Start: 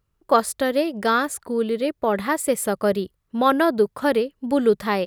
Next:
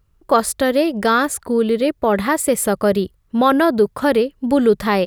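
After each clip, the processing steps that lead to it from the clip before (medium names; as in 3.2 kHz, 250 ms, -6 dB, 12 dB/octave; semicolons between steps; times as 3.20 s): bass shelf 88 Hz +9.5 dB; in parallel at +2 dB: peak limiter -15 dBFS, peak gain reduction 11.5 dB; on the sum: trim -1 dB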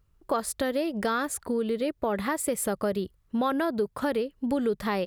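compression 2.5:1, threshold -21 dBFS, peak gain reduction 8.5 dB; trim -5.5 dB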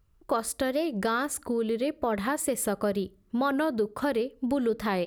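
on a send at -21.5 dB: reverberation RT60 0.40 s, pre-delay 3 ms; on the sum: warped record 45 rpm, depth 100 cents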